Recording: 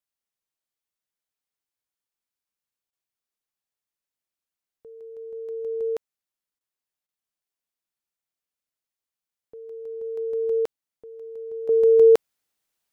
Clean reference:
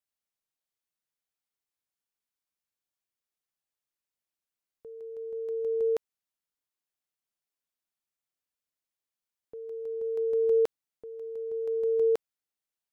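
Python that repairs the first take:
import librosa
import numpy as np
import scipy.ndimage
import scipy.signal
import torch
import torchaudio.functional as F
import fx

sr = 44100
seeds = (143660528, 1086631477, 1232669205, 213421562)

y = fx.fix_interpolate(x, sr, at_s=(2.91, 6.59, 7.07), length_ms=15.0)
y = fx.gain(y, sr, db=fx.steps((0.0, 0.0), (11.69, -11.0)))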